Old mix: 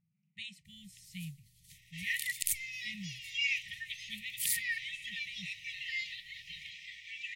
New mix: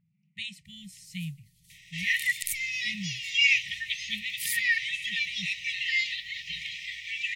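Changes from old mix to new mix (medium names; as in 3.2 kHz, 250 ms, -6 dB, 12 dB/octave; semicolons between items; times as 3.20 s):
speech +7.5 dB; second sound +10.5 dB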